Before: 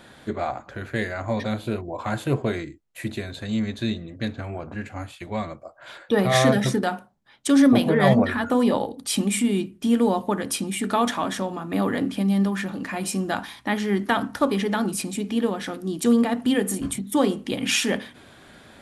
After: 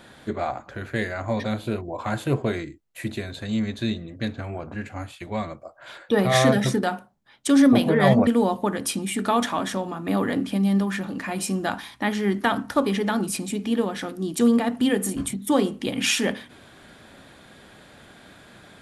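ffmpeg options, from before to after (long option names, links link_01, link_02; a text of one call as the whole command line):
ffmpeg -i in.wav -filter_complex "[0:a]asplit=2[link_01][link_02];[link_01]atrim=end=8.272[link_03];[link_02]atrim=start=9.918[link_04];[link_03][link_04]acrossfade=duration=0.004:curve1=hsin:curve2=hsin" out.wav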